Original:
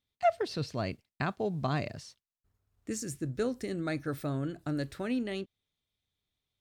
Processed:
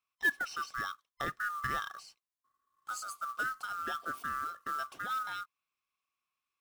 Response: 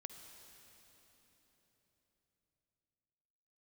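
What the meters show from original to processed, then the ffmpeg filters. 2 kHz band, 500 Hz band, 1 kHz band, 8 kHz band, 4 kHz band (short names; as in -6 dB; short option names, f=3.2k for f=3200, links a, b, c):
+8.0 dB, -17.5 dB, +2.0 dB, -2.5 dB, -1.5 dB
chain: -af "afftfilt=real='real(if(lt(b,960),b+48*(1-2*mod(floor(b/48),2)),b),0)':imag='imag(if(lt(b,960),b+48*(1-2*mod(floor(b/48),2)),b),0)':win_size=2048:overlap=0.75,acrusher=bits=4:mode=log:mix=0:aa=0.000001,volume=-4dB"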